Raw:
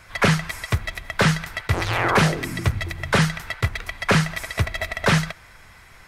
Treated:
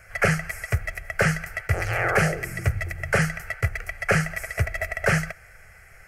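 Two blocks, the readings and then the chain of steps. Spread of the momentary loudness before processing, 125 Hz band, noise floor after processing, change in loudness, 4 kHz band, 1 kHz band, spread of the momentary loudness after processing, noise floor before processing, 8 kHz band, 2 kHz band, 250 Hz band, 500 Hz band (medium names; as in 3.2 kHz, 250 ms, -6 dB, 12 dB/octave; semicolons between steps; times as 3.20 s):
7 LU, -3.5 dB, -50 dBFS, -3.0 dB, -11.0 dB, -5.0 dB, 7 LU, -48 dBFS, -3.0 dB, -0.5 dB, -6.0 dB, -1.5 dB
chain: static phaser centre 1 kHz, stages 6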